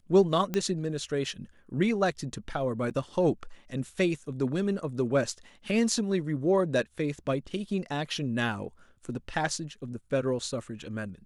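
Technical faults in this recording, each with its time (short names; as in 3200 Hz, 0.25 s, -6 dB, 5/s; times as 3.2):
0.54 pop -15 dBFS
2.9–2.91 gap 7.7 ms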